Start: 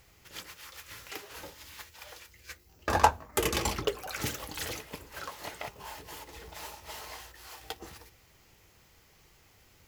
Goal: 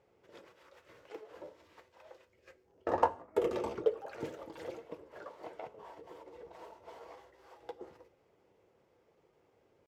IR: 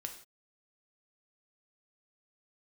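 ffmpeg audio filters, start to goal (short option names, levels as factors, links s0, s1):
-filter_complex "[0:a]bandpass=f=430:t=q:w=1.7:csg=0,asetrate=46722,aresample=44100,atempo=0.943874,asplit=2[s0][s1];[1:a]atrim=start_sample=2205,highshelf=f=4700:g=8[s2];[s1][s2]afir=irnorm=-1:irlink=0,volume=0.422[s3];[s0][s3]amix=inputs=2:normalize=0"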